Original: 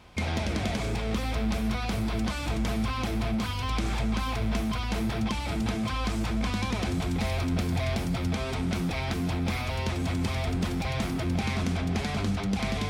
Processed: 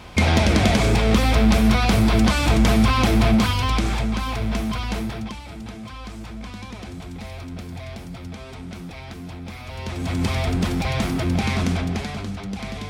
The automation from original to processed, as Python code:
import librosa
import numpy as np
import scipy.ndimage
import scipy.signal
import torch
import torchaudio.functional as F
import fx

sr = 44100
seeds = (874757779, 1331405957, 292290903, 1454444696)

y = fx.gain(x, sr, db=fx.line((3.35, 12.0), (4.13, 4.0), (4.91, 4.0), (5.48, -6.5), (9.58, -6.5), (10.24, 6.5), (11.72, 6.5), (12.26, -2.0)))